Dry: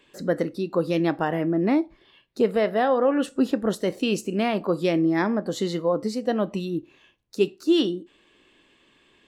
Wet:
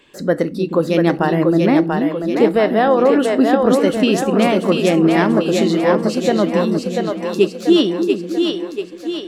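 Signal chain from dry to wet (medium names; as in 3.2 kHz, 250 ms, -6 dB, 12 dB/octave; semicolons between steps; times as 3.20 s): two-band feedback delay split 320 Hz, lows 309 ms, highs 688 ms, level -3.5 dB; trim +7 dB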